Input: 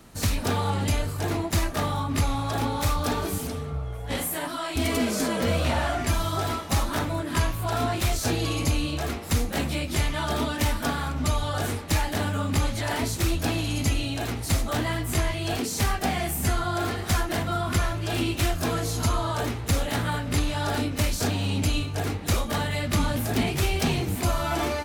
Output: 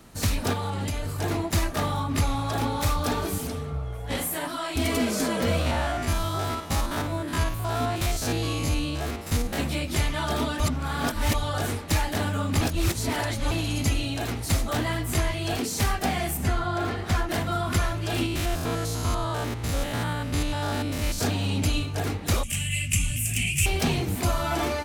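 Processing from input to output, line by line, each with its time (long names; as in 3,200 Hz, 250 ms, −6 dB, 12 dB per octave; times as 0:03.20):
0:00.53–0:01.19: downward compressor, threshold −25 dBFS
0:05.61–0:09.59: spectrum averaged block by block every 50 ms
0:10.60–0:11.34: reverse
0:12.61–0:13.51: reverse
0:16.37–0:17.29: high-shelf EQ 5,800 Hz −12 dB
0:18.26–0:21.19: spectrum averaged block by block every 100 ms
0:22.43–0:23.66: drawn EQ curve 140 Hz 0 dB, 410 Hz −24 dB, 630 Hz −21 dB, 960 Hz −26 dB, 1,600 Hz −14 dB, 2,700 Hz +12 dB, 3,900 Hz −13 dB, 8,000 Hz +14 dB, 15,000 Hz 0 dB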